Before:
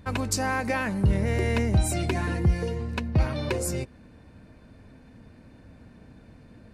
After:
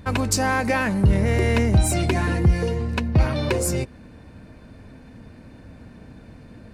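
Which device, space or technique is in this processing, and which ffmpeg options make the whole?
parallel distortion: -filter_complex "[0:a]asplit=2[link_01][link_02];[link_02]asoftclip=type=hard:threshold=-28.5dB,volume=-10dB[link_03];[link_01][link_03]amix=inputs=2:normalize=0,volume=4dB"

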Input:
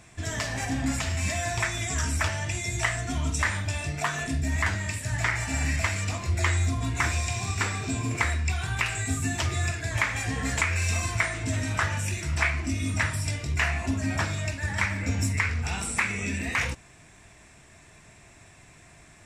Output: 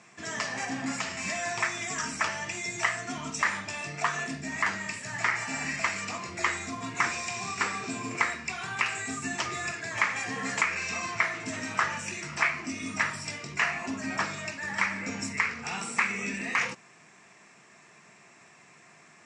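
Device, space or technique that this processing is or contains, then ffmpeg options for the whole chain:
television speaker: -filter_complex "[0:a]asettb=1/sr,asplit=3[link_01][link_02][link_03];[link_01]atrim=end=10.754[link_04];[link_02]atrim=start=10.75:end=11.4,asetpts=PTS-STARTPTS,afade=type=in:duration=0.004:curve=qsin,afade=type=out:start_time=0.646:duration=0.004:curve=qsin,lowpass=6100[link_05];[link_03]atrim=start=11.396[link_06];[link_04][link_05]acrossfade=duration=0.004:curve1=hsin:curve2=qsin[link_07];[link_07][link_06]acrossfade=duration=0.004:curve1=qsin:curve2=hsin,highpass=frequency=180:width=0.5412,highpass=frequency=180:width=1.3066,equalizer=frequency=290:width_type=q:width=4:gain=-7,equalizer=frequency=620:width_type=q:width=4:gain=-4,equalizer=frequency=1200:width_type=q:width=4:gain=4,equalizer=frequency=3600:width_type=q:width=4:gain=-6,lowpass=frequency=7100:width=0.5412,lowpass=frequency=7100:width=1.3066,bandreject=frequency=1500:width=26"

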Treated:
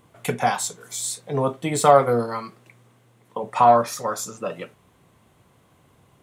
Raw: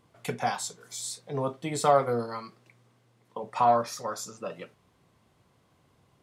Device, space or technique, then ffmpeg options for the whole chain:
exciter from parts: -filter_complex "[0:a]asplit=2[link_01][link_02];[link_02]highpass=frequency=4600:width=0.5412,highpass=frequency=4600:width=1.3066,asoftclip=type=tanh:threshold=-33dB,volume=-4dB[link_03];[link_01][link_03]amix=inputs=2:normalize=0,volume=7.5dB"

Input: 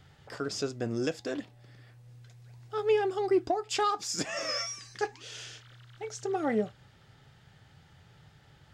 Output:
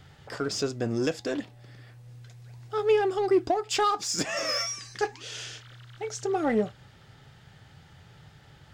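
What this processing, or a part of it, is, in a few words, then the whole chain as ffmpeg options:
parallel distortion: -filter_complex "[0:a]asplit=2[link_01][link_02];[link_02]asoftclip=type=hard:threshold=-34.5dB,volume=-9.5dB[link_03];[link_01][link_03]amix=inputs=2:normalize=0,volume=2.5dB"

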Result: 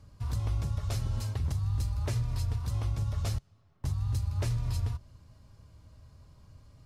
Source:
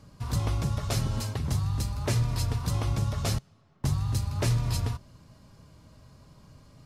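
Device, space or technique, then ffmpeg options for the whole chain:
car stereo with a boomy subwoofer: -af "lowshelf=frequency=120:width_type=q:width=1.5:gain=7.5,alimiter=limit=-16dB:level=0:latency=1:release=217,volume=-6.5dB"

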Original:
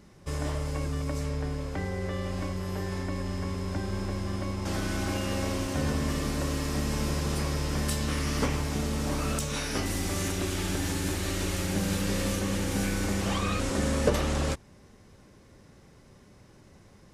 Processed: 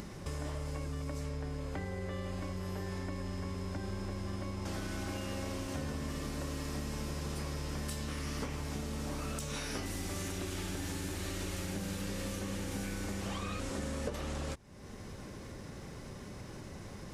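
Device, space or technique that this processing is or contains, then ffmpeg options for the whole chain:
upward and downward compression: -filter_complex "[0:a]acompressor=mode=upward:threshold=-31dB:ratio=2.5,acompressor=threshold=-32dB:ratio=5,asettb=1/sr,asplit=3[link_01][link_02][link_03];[link_01]atrim=end=1.584[link_04];[link_02]atrim=start=1.58:end=2.43,asetpts=PTS-STARTPTS,afade=type=in:duration=0.004:curve=qsin,afade=type=out:start_time=0.846:duration=0.004:curve=qsin,bandreject=frequency=5500:width=12[link_05];[link_03]atrim=start=2.426[link_06];[link_04][link_05]acrossfade=duration=0.004:curve1=hsin:curve2=qsin[link_07];[link_07][link_06]acrossfade=duration=0.004:curve1=qsin:curve2=hsin,volume=-3dB"

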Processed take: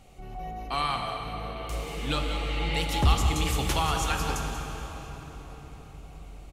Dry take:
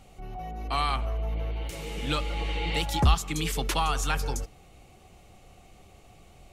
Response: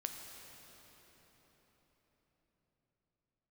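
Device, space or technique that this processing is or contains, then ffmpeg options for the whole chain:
cave: -filter_complex "[0:a]aecho=1:1:187:0.316[link_01];[1:a]atrim=start_sample=2205[link_02];[link_01][link_02]afir=irnorm=-1:irlink=0,volume=1.5dB"

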